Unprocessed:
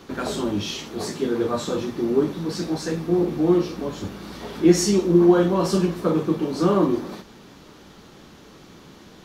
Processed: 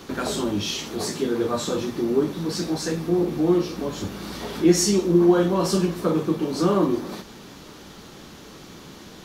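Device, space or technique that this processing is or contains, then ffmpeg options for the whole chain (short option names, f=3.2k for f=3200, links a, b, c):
parallel compression: -filter_complex "[0:a]highshelf=f=4.4k:g=5.5,asplit=2[a][b];[b]acompressor=threshold=-32dB:ratio=6,volume=-1dB[c];[a][c]amix=inputs=2:normalize=0,volume=-2.5dB"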